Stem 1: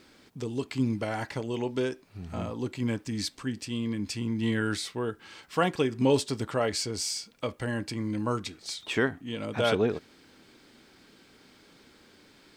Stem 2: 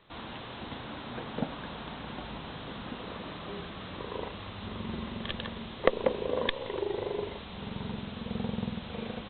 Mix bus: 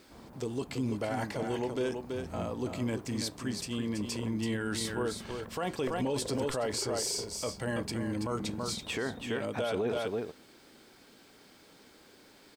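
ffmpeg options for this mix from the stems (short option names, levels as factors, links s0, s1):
-filter_complex "[0:a]equalizer=f=650:t=o:w=1.7:g=5.5,highshelf=f=7400:g=10.5,volume=0.631,asplit=2[s0][s1];[s1]volume=0.422[s2];[1:a]adynamicsmooth=sensitivity=2.5:basefreq=520,lowpass=2800,volume=0.447[s3];[s2]aecho=0:1:330:1[s4];[s0][s3][s4]amix=inputs=3:normalize=0,alimiter=limit=0.0668:level=0:latency=1:release=20"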